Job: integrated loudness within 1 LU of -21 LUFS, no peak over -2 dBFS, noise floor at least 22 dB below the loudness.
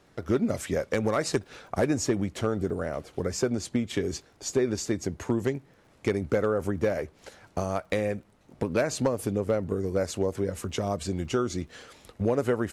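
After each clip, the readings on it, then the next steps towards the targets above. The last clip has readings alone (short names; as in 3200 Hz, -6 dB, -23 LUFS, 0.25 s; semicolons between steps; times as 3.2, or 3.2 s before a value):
ticks 26/s; loudness -29.0 LUFS; peak -15.0 dBFS; loudness target -21.0 LUFS
-> de-click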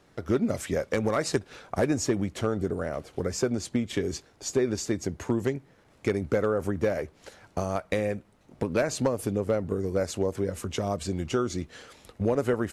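ticks 0/s; loudness -29.0 LUFS; peak -11.0 dBFS; loudness target -21.0 LUFS
-> gain +8 dB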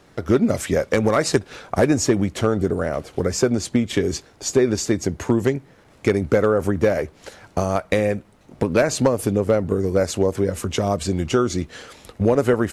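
loudness -21.0 LUFS; peak -3.0 dBFS; noise floor -52 dBFS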